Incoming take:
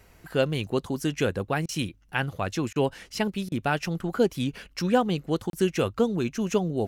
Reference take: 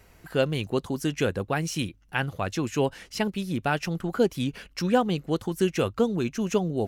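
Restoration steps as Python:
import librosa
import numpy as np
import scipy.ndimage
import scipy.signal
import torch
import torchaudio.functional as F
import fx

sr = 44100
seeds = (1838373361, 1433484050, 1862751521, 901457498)

y = fx.fix_interpolate(x, sr, at_s=(5.5,), length_ms=32.0)
y = fx.fix_interpolate(y, sr, at_s=(1.66, 2.73, 3.49), length_ms=27.0)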